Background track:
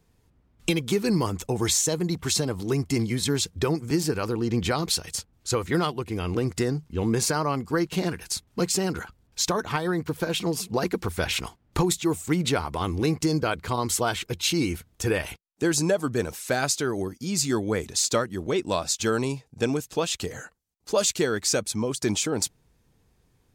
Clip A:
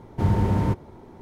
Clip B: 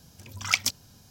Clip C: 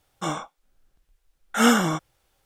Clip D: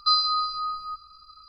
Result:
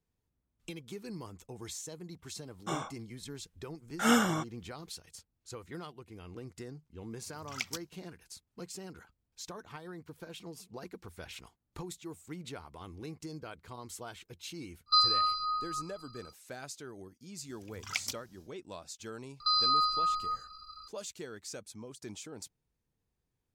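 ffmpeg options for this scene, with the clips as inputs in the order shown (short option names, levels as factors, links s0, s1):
-filter_complex "[2:a]asplit=2[s0][s1];[4:a]asplit=2[s2][s3];[0:a]volume=0.106[s4];[s0]agate=range=0.0224:threshold=0.00398:ratio=3:release=100:detection=peak[s5];[s3]alimiter=limit=0.106:level=0:latency=1:release=71[s6];[3:a]atrim=end=2.45,asetpts=PTS-STARTPTS,volume=0.422,afade=t=in:d=0.004:c=hsin,afade=t=out:st=2.446:d=0.004:c=hsin,adelay=2450[s7];[s5]atrim=end=1.1,asetpts=PTS-STARTPTS,volume=0.211,afade=t=in:d=0.004:c=hsin,afade=t=out:st=1.096:d=0.004:c=hsin,adelay=7070[s8];[s2]atrim=end=1.48,asetpts=PTS-STARTPTS,volume=0.668,afade=t=in:d=0.05,afade=t=out:st=1.43:d=0.05,adelay=14860[s9];[s1]atrim=end=1.1,asetpts=PTS-STARTPTS,volume=0.282,afade=t=in:d=0.1,afade=t=out:st=1:d=0.1,adelay=17420[s10];[s6]atrim=end=1.48,asetpts=PTS-STARTPTS,afade=t=in:d=0.004:c=hsin,afade=t=out:st=1.476:d=0.004:c=hsin,adelay=855540S[s11];[s4][s7][s8][s9][s10][s11]amix=inputs=6:normalize=0"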